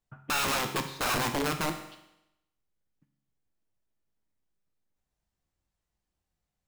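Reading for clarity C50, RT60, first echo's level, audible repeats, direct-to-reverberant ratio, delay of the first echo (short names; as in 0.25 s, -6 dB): 8.5 dB, 0.85 s, none, none, 5.0 dB, none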